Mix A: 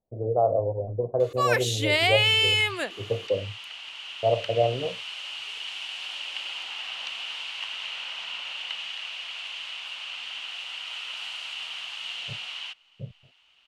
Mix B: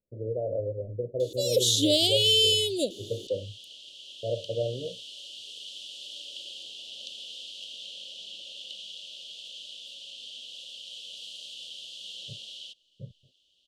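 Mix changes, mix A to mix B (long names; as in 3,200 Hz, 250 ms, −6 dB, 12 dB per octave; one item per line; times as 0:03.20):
speech −4.0 dB
first sound +7.0 dB
master: add Chebyshev band-stop filter 570–3,300 Hz, order 4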